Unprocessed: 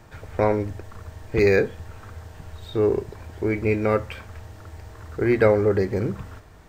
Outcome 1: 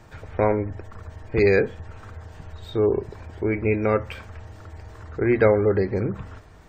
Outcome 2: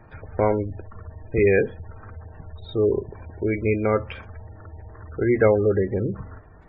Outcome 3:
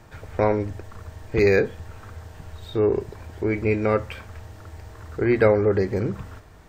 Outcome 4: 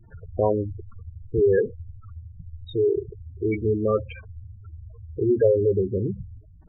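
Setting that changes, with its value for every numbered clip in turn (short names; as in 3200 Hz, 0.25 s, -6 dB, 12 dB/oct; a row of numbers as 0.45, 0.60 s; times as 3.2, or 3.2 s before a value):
spectral gate, under each frame's peak: -40, -25, -55, -10 dB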